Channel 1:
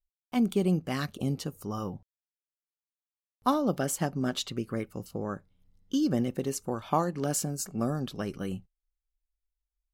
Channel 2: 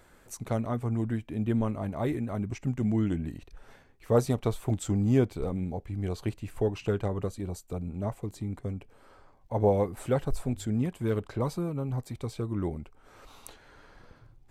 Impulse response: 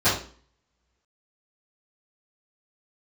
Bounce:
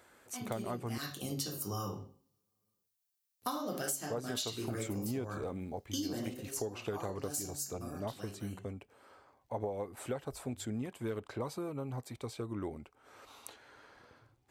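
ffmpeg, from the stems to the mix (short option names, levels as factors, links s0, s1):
-filter_complex "[0:a]crystalizer=i=6.5:c=0,volume=0.335,afade=t=in:st=0.9:d=0.49:silence=0.223872,afade=t=out:st=6.13:d=0.28:silence=0.237137,asplit=2[s0][s1];[s1]volume=0.188[s2];[1:a]lowshelf=f=250:g=-7.5,volume=0.841,asplit=3[s3][s4][s5];[s3]atrim=end=0.98,asetpts=PTS-STARTPTS,afade=t=out:st=0.976:d=0.004:c=hsin[s6];[s4]atrim=start=0.98:end=3.43,asetpts=PTS-STARTPTS,volume=0[s7];[s5]atrim=start=3.43,asetpts=PTS-STARTPTS,afade=t=in:d=0.004:c=hsin[s8];[s6][s7][s8]concat=n=3:v=0:a=1[s9];[2:a]atrim=start_sample=2205[s10];[s2][s10]afir=irnorm=-1:irlink=0[s11];[s0][s9][s11]amix=inputs=3:normalize=0,highpass=83,equalizer=f=170:w=5.6:g=-8.5,acompressor=threshold=0.0224:ratio=16"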